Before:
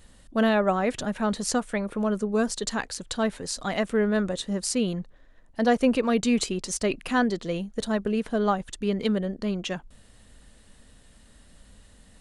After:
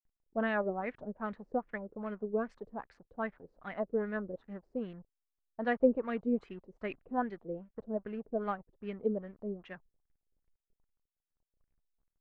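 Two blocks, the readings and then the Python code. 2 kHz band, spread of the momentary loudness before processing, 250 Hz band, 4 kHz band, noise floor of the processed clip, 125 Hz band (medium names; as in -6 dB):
-10.0 dB, 9 LU, -12.0 dB, under -20 dB, under -85 dBFS, -14.5 dB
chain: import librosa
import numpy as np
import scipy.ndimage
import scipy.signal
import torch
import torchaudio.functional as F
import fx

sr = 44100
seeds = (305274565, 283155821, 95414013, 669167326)

y = fx.backlash(x, sr, play_db=-38.0)
y = fx.filter_lfo_lowpass(y, sr, shape='sine', hz=2.5, low_hz=420.0, high_hz=2200.0, q=2.8)
y = fx.upward_expand(y, sr, threshold_db=-34.0, expansion=1.5)
y = F.gain(torch.from_numpy(y), -8.5).numpy()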